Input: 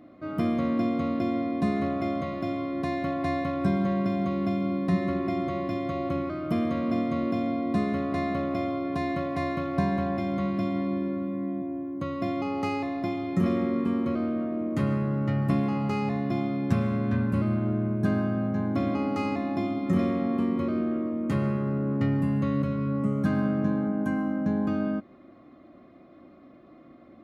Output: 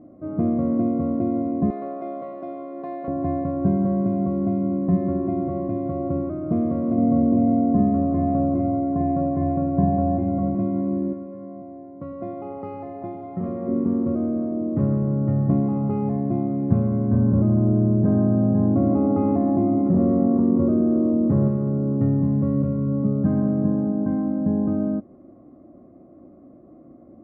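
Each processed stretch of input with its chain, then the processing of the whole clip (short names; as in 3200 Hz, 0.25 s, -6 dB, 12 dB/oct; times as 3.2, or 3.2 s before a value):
1.7–3.08 HPF 510 Hz + high shelf 2600 Hz +8.5 dB
6.93–10.55 Butterworth band-stop 3800 Hz, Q 2 + high shelf 2900 Hz -9.5 dB + flutter echo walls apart 8.1 m, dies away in 0.55 s
11.13–13.68 low shelf 500 Hz -10 dB + split-band echo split 550 Hz, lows 0.109 s, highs 0.192 s, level -8 dB
17.11–21.48 LPF 1800 Hz + hard clip -18.5 dBFS + fast leveller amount 70%
whole clip: Chebyshev low-pass 590 Hz, order 2; bell 72 Hz +3.5 dB 2.6 oct; gain +4 dB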